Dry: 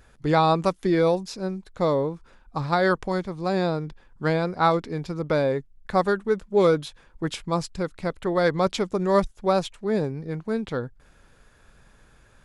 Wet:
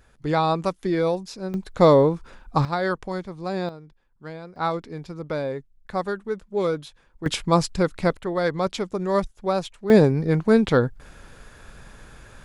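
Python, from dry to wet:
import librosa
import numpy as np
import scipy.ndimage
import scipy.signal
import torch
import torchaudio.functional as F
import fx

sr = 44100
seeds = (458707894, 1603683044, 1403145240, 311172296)

y = fx.gain(x, sr, db=fx.steps((0.0, -2.0), (1.54, 8.0), (2.65, -3.5), (3.69, -14.0), (4.56, -5.0), (7.26, 6.5), (8.17, -2.0), (9.9, 10.0)))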